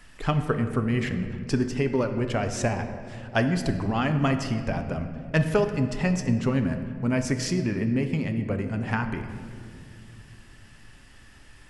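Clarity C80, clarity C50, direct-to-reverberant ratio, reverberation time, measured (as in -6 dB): 9.5 dB, 8.5 dB, 7.0 dB, 2.4 s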